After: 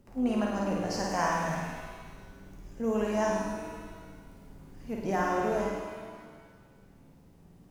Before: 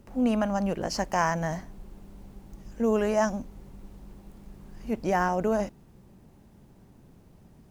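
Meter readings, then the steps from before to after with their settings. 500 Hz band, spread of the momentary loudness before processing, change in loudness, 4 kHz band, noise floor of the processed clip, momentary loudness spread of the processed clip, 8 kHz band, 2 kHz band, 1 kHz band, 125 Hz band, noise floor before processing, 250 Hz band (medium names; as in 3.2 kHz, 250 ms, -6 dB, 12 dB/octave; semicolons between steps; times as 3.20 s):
-3.0 dB, 13 LU, -3.5 dB, -2.0 dB, -57 dBFS, 21 LU, -2.0 dB, -2.0 dB, -2.0 dB, -3.0 dB, -56 dBFS, -3.0 dB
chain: flutter echo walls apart 9 m, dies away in 0.84 s; pitch-shifted reverb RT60 1.6 s, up +7 st, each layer -8 dB, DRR 3.5 dB; trim -6.5 dB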